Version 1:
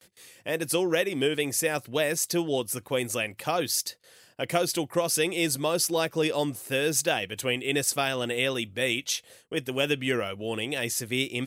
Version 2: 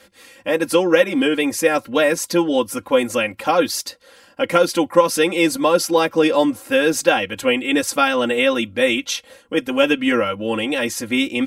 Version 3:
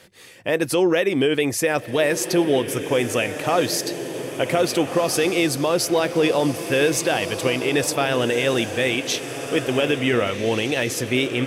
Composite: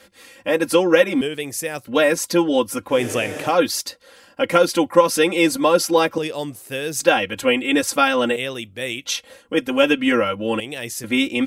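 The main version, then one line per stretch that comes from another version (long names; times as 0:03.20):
2
0:01.21–0:01.87: punch in from 1
0:02.95–0:03.50: punch in from 3, crossfade 0.16 s
0:06.18–0:07.00: punch in from 1
0:08.36–0:09.05: punch in from 1
0:10.60–0:11.04: punch in from 1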